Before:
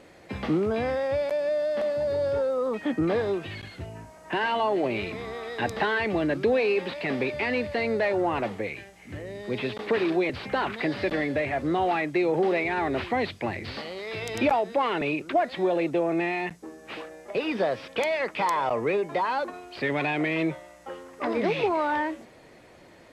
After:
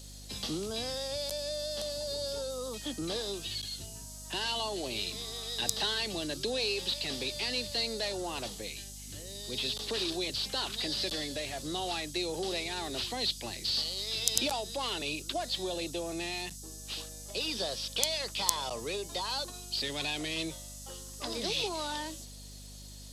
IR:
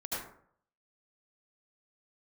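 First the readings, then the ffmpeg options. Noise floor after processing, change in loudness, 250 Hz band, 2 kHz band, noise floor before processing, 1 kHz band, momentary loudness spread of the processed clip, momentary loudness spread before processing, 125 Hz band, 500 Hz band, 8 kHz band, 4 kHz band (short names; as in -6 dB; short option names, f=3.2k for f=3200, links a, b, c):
-46 dBFS, -6.5 dB, -12.0 dB, -10.0 dB, -52 dBFS, -12.0 dB, 10 LU, 11 LU, -8.0 dB, -12.0 dB, n/a, +8.5 dB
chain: -filter_complex "[0:a]acrossover=split=180|380|2200[a][b][c][d];[d]aexciter=amount=15.3:drive=7.5:freq=3.2k[e];[a][b][c][e]amix=inputs=4:normalize=0,aeval=exprs='val(0)+0.0158*(sin(2*PI*50*n/s)+sin(2*PI*2*50*n/s)/2+sin(2*PI*3*50*n/s)/3+sin(2*PI*4*50*n/s)/4+sin(2*PI*5*50*n/s)/5)':c=same,volume=-12dB"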